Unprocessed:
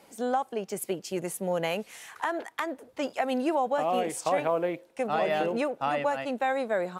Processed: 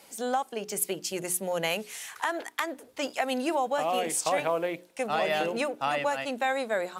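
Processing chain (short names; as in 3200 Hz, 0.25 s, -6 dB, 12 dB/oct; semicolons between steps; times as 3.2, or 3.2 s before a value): high shelf 2100 Hz +10.5 dB; notches 60/120/180/240/300/360/420 Hz; gain -2 dB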